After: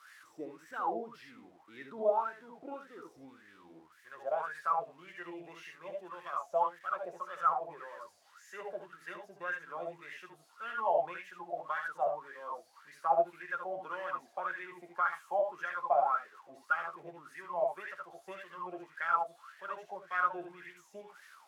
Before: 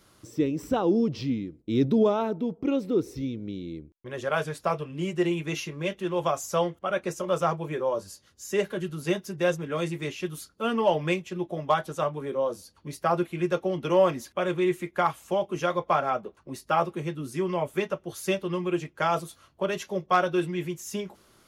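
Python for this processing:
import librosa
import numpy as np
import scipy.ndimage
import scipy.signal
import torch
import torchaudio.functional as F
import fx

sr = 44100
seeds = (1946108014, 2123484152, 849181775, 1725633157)

y = x + 0.5 * 10.0 ** (-28.5 / 20.0) * np.diff(np.sign(x), prepend=np.sign(x[:1]))
y = fx.room_early_taps(y, sr, ms=(67, 79), db=(-7.0, -7.0))
y = fx.wah_lfo(y, sr, hz=1.8, low_hz=670.0, high_hz=1800.0, q=12.0)
y = F.gain(torch.from_numpy(y), 5.5).numpy()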